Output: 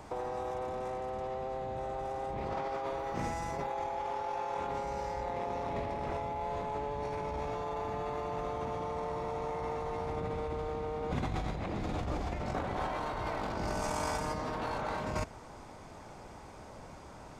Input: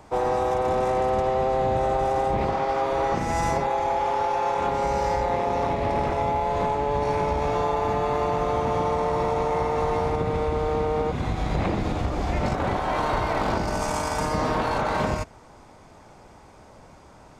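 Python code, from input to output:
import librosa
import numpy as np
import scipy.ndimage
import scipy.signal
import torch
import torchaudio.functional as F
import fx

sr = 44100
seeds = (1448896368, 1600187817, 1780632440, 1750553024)

y = fx.over_compress(x, sr, threshold_db=-30.0, ratio=-1.0)
y = fx.dmg_crackle(y, sr, seeds[0], per_s=520.0, level_db=-52.0, at=(2.98, 3.69), fade=0.02)
y = y * librosa.db_to_amplitude(-6.0)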